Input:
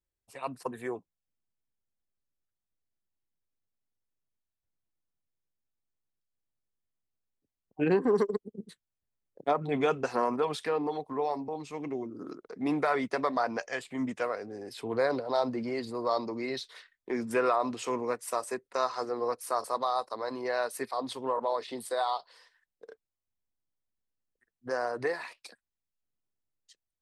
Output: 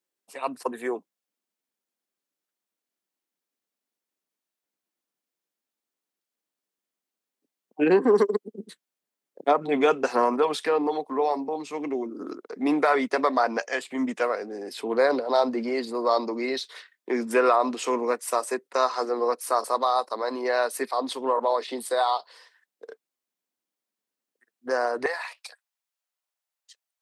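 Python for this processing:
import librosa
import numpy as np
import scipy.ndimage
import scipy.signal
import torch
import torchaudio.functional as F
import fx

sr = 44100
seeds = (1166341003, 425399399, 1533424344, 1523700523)

y = fx.highpass(x, sr, hz=fx.steps((0.0, 220.0), (25.06, 620.0)), slope=24)
y = F.gain(torch.from_numpy(y), 6.5).numpy()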